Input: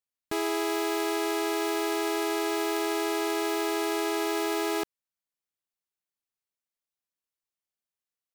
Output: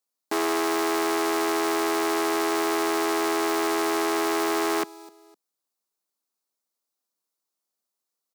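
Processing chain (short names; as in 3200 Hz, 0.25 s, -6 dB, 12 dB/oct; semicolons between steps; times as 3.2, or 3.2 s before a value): HPF 200 Hz 24 dB/oct; band shelf 2300 Hz -8 dB 1.3 oct; on a send: feedback echo 0.254 s, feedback 32%, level -23 dB; on the sum: core saturation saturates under 2400 Hz; gain +8 dB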